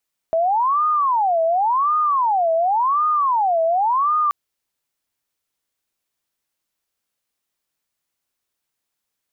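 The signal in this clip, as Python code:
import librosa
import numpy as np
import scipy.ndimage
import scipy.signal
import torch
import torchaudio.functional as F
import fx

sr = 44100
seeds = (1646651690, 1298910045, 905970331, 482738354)

y = fx.siren(sr, length_s=3.98, kind='wail', low_hz=651.0, high_hz=1230.0, per_s=0.91, wave='sine', level_db=-15.0)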